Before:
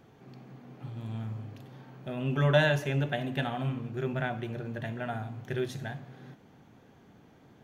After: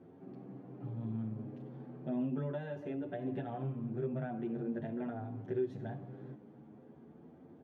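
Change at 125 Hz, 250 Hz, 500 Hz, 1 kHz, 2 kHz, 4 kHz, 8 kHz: -9.5 dB, -2.0 dB, -7.0 dB, -10.5 dB, -20.5 dB, under -25 dB, under -25 dB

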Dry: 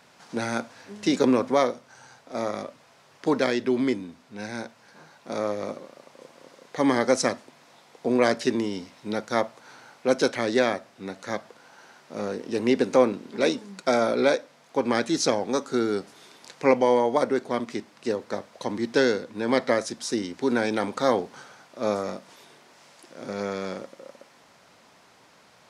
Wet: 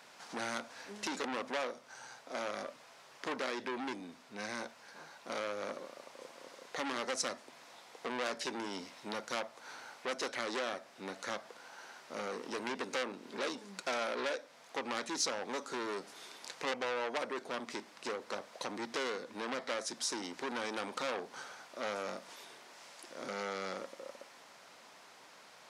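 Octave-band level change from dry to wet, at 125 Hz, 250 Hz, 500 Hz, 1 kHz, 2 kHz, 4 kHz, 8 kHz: -19.5 dB, -18.0 dB, -15.5 dB, -10.5 dB, -8.0 dB, -6.5 dB, -6.0 dB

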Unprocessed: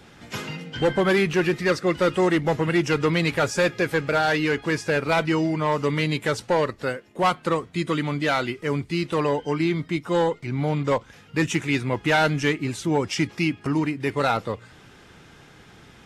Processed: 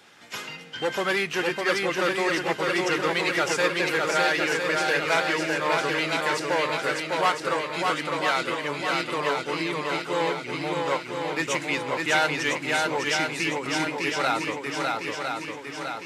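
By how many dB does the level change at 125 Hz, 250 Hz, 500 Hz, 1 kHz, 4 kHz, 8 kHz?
-12.0 dB, -7.0 dB, -3.0 dB, +0.5 dB, +3.0 dB, +3.0 dB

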